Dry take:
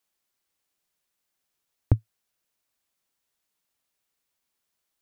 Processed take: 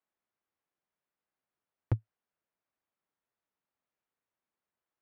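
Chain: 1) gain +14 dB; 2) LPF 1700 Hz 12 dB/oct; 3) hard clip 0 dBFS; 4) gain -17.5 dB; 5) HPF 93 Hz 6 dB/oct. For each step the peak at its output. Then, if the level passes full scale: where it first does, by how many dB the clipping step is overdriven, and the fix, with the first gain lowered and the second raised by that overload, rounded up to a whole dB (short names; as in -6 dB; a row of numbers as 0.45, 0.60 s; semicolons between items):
+7.0, +7.0, 0.0, -17.5, -15.0 dBFS; step 1, 7.0 dB; step 1 +7 dB, step 4 -10.5 dB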